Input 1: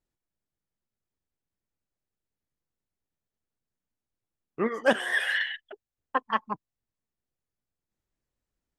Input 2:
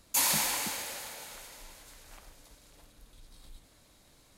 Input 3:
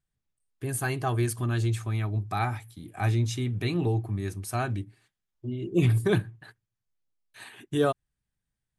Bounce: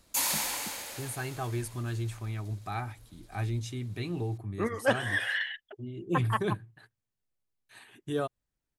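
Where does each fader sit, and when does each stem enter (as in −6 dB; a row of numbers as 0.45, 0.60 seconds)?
−3.5, −2.0, −7.0 decibels; 0.00, 0.00, 0.35 seconds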